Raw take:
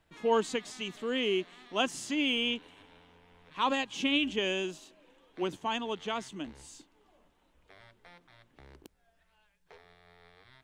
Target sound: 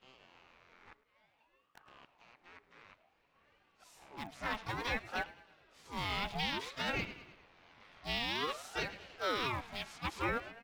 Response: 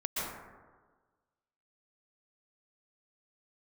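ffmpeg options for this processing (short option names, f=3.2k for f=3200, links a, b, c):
-filter_complex "[0:a]areverse,equalizer=f=10k:t=o:w=1.2:g=-8.5,bandreject=f=142.1:t=h:w=4,bandreject=f=284.2:t=h:w=4,bandreject=f=426.3:t=h:w=4,bandreject=f=568.4:t=h:w=4,bandreject=f=710.5:t=h:w=4,bandreject=f=852.6:t=h:w=4,bandreject=f=994.7:t=h:w=4,bandreject=f=1.1368k:t=h:w=4,asplit=2[a][b];[b]acrusher=bits=3:dc=4:mix=0:aa=0.000001,volume=-10dB[c];[a][c]amix=inputs=2:normalize=0,asplit=2[d][e];[e]asetrate=66075,aresample=44100,atempo=0.66742,volume=-6dB[f];[d][f]amix=inputs=2:normalize=0,equalizer=f=1.6k:t=o:w=0.88:g=10.5,asplit=2[g][h];[h]aecho=0:1:105|210|315|420:0.0944|0.05|0.0265|0.0141[i];[g][i]amix=inputs=2:normalize=0,alimiter=limit=-17.5dB:level=0:latency=1:release=111,aeval=exprs='val(0)*sin(2*PI*800*n/s+800*0.5/0.56*sin(2*PI*0.56*n/s))':c=same,volume=-5dB"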